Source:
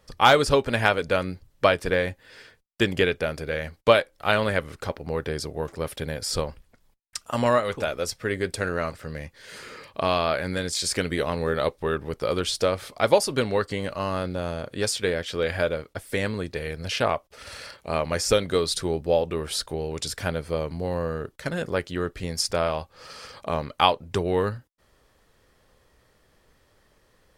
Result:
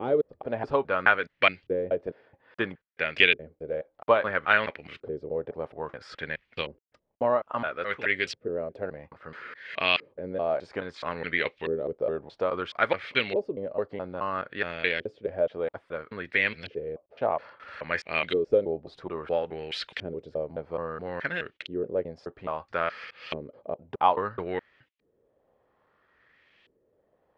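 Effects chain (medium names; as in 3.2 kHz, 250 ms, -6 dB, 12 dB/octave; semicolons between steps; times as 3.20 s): slices played last to first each 212 ms, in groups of 2; LFO low-pass saw up 0.6 Hz 370–2900 Hz; frequency weighting D; trim -7 dB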